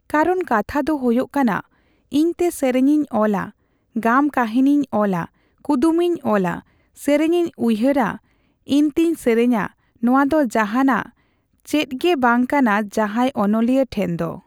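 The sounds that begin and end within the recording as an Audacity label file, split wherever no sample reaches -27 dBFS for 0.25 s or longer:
2.120000	3.480000	sound
3.960000	5.250000	sound
5.650000	6.590000	sound
7.020000	8.160000	sound
8.690000	9.670000	sound
10.030000	11.060000	sound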